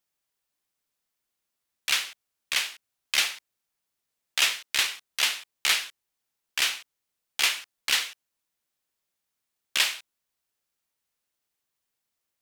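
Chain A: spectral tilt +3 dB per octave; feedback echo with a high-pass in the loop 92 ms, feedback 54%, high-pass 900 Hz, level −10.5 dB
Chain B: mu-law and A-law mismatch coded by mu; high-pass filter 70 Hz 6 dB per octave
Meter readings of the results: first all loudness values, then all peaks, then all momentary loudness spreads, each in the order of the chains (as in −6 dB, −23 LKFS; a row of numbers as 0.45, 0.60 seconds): −20.0, −26.0 LKFS; −1.0, −9.0 dBFS; 16, 13 LU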